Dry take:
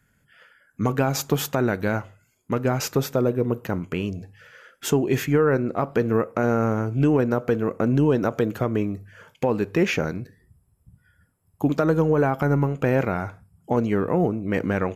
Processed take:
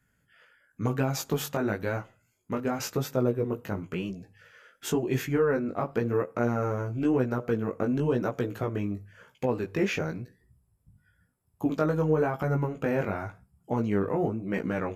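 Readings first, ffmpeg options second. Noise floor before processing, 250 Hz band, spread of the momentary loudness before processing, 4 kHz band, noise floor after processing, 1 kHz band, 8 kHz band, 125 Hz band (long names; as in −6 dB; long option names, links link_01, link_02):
−66 dBFS, −6.0 dB, 9 LU, −6.0 dB, −72 dBFS, −6.0 dB, −6.0 dB, −6.5 dB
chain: -af "flanger=delay=15.5:depth=4.8:speed=0.96,volume=-3dB"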